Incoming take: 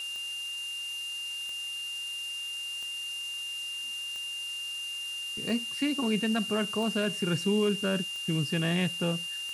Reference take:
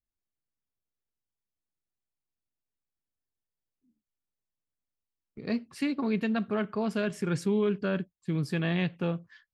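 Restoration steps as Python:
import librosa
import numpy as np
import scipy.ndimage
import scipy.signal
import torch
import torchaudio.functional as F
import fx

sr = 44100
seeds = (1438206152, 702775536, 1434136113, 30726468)

y = fx.fix_declick_ar(x, sr, threshold=10.0)
y = fx.notch(y, sr, hz=2800.0, q=30.0)
y = fx.noise_reduce(y, sr, print_start_s=3.64, print_end_s=4.14, reduce_db=30.0)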